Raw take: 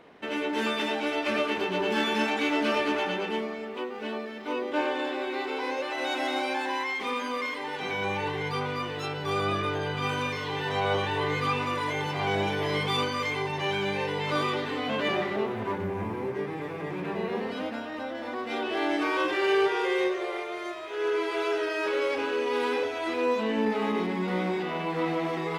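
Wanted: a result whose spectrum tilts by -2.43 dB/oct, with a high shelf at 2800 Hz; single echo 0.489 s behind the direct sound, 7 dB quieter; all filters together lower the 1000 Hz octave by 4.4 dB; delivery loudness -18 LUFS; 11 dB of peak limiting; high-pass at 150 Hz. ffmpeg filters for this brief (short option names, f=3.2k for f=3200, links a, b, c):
-af "highpass=150,equalizer=f=1k:t=o:g=-6,highshelf=f=2.8k:g=4.5,alimiter=level_in=1.5dB:limit=-24dB:level=0:latency=1,volume=-1.5dB,aecho=1:1:489:0.447,volume=15dB"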